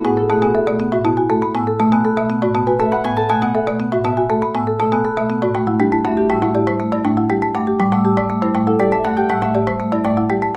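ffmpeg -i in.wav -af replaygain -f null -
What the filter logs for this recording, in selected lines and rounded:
track_gain = -0.5 dB
track_peak = 0.463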